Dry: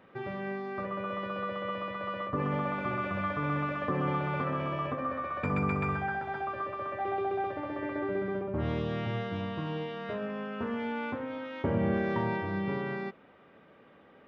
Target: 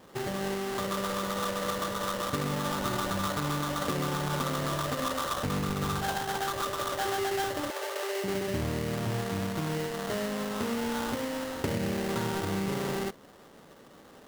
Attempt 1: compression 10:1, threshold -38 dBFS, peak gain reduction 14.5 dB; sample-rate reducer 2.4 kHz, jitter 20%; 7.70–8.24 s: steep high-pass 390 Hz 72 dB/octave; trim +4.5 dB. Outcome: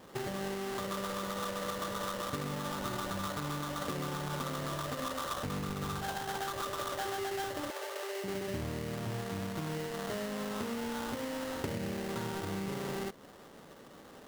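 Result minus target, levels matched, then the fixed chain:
compression: peak gain reduction +6.5 dB
compression 10:1, threshold -31 dBFS, peak gain reduction 8.5 dB; sample-rate reducer 2.4 kHz, jitter 20%; 7.70–8.24 s: steep high-pass 390 Hz 72 dB/octave; trim +4.5 dB

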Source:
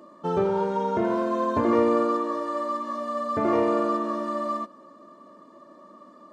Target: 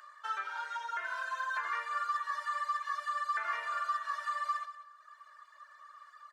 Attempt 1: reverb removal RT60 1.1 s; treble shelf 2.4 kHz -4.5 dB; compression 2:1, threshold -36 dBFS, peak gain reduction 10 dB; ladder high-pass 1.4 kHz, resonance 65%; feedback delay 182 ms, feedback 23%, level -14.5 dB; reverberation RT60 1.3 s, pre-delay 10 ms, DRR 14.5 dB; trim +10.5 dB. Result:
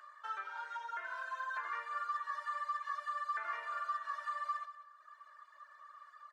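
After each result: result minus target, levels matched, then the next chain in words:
4 kHz band -3.5 dB; compression: peak gain reduction +3 dB
reverb removal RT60 1.1 s; treble shelf 2.4 kHz +3.5 dB; compression 2:1, threshold -36 dBFS, peak gain reduction 10 dB; ladder high-pass 1.4 kHz, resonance 65%; feedback delay 182 ms, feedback 23%, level -14.5 dB; reverberation RT60 1.3 s, pre-delay 10 ms, DRR 14.5 dB; trim +10.5 dB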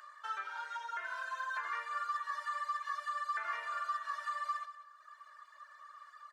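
compression: peak gain reduction +3 dB
reverb removal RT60 1.1 s; treble shelf 2.4 kHz +3.5 dB; compression 2:1, threshold -29.5 dBFS, peak gain reduction 7 dB; ladder high-pass 1.4 kHz, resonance 65%; feedback delay 182 ms, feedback 23%, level -14.5 dB; reverberation RT60 1.3 s, pre-delay 10 ms, DRR 14.5 dB; trim +10.5 dB

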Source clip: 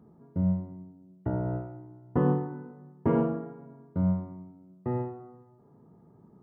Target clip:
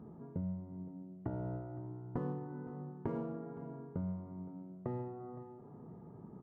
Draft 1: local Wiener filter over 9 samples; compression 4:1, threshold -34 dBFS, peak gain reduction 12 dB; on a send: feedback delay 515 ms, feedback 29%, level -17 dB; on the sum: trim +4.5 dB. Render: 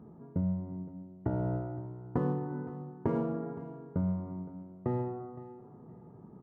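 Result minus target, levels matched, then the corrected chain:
compression: peak gain reduction -8 dB
local Wiener filter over 9 samples; compression 4:1, threshold -44.5 dBFS, peak gain reduction 20 dB; on a send: feedback delay 515 ms, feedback 29%, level -17 dB; on the sum: trim +4.5 dB

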